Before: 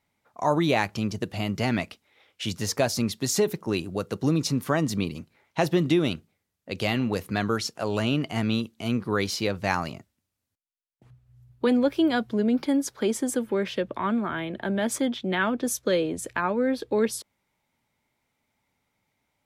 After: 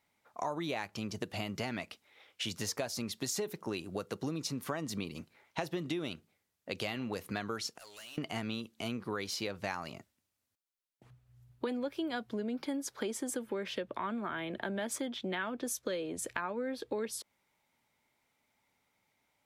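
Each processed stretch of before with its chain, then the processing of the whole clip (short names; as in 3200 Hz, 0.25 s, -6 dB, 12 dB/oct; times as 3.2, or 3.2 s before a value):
7.78–8.18 pre-emphasis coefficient 0.97 + tube stage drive 45 dB, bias 0.45
whole clip: low shelf 250 Hz -8 dB; compressor 5:1, threshold -34 dBFS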